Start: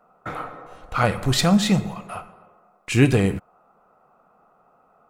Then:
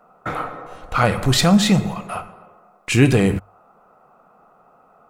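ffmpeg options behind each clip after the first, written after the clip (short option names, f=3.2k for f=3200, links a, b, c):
-filter_complex "[0:a]bandreject=f=50:t=h:w=6,bandreject=f=100:t=h:w=6,asplit=2[a][b];[b]alimiter=limit=-15.5dB:level=0:latency=1,volume=-1dB[c];[a][c]amix=inputs=2:normalize=0"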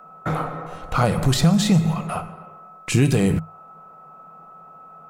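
-filter_complex "[0:a]equalizer=f=160:t=o:w=0.2:g=14,aeval=exprs='val(0)+0.00631*sin(2*PI*1300*n/s)':c=same,acrossover=split=1200|3700[a][b][c];[a]acompressor=threshold=-16dB:ratio=4[d];[b]acompressor=threshold=-37dB:ratio=4[e];[c]acompressor=threshold=-27dB:ratio=4[f];[d][e][f]amix=inputs=3:normalize=0,volume=1.5dB"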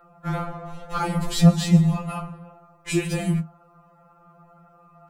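-af "flanger=delay=7.7:depth=6.3:regen=-49:speed=1.9:shape=triangular,afftfilt=real='re*2.83*eq(mod(b,8),0)':imag='im*2.83*eq(mod(b,8),0)':win_size=2048:overlap=0.75,volume=2.5dB"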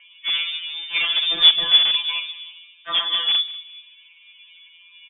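-filter_complex "[0:a]asplit=2[a][b];[b]aeval=exprs='(mod(7.08*val(0)+1,2)-1)/7.08':c=same,volume=-5dB[c];[a][c]amix=inputs=2:normalize=0,asplit=2[d][e];[e]adelay=192,lowpass=f=1.5k:p=1,volume=-15.5dB,asplit=2[f][g];[g]adelay=192,lowpass=f=1.5k:p=1,volume=0.36,asplit=2[h][i];[i]adelay=192,lowpass=f=1.5k:p=1,volume=0.36[j];[d][f][h][j]amix=inputs=4:normalize=0,lowpass=f=3.1k:t=q:w=0.5098,lowpass=f=3.1k:t=q:w=0.6013,lowpass=f=3.1k:t=q:w=0.9,lowpass=f=3.1k:t=q:w=2.563,afreqshift=-3600"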